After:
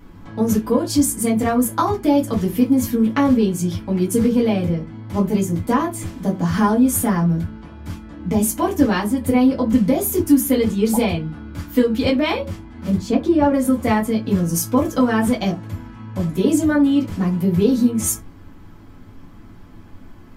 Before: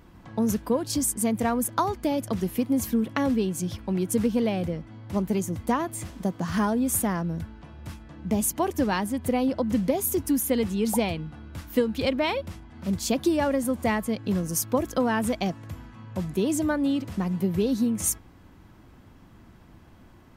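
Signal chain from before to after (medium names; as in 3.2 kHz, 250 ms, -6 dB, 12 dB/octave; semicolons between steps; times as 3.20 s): 12.97–13.54 s: low-pass 1.5 kHz 6 dB/octave; reverberation RT60 0.20 s, pre-delay 3 ms, DRR -4.5 dB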